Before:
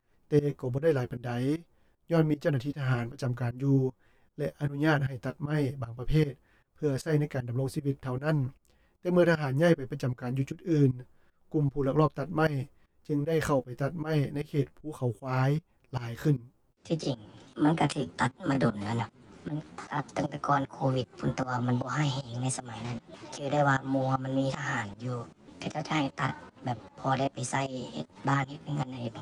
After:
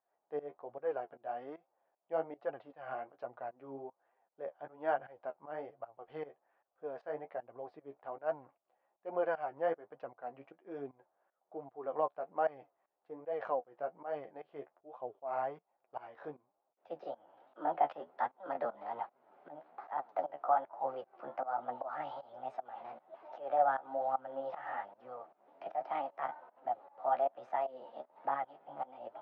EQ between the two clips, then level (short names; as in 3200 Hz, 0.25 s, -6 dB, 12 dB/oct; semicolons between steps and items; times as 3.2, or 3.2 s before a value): resonant high-pass 700 Hz, resonance Q 4; LPF 1200 Hz 6 dB/oct; air absorption 330 m; -7.5 dB